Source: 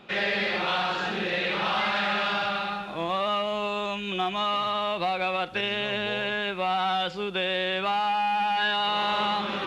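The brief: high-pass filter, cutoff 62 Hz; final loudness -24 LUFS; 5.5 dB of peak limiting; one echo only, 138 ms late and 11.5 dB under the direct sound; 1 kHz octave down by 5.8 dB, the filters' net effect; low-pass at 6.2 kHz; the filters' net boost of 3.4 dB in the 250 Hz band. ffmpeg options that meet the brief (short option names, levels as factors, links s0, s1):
-af "highpass=62,lowpass=6200,equalizer=f=250:t=o:g=5.5,equalizer=f=1000:t=o:g=-8.5,alimiter=limit=0.1:level=0:latency=1,aecho=1:1:138:0.266,volume=1.78"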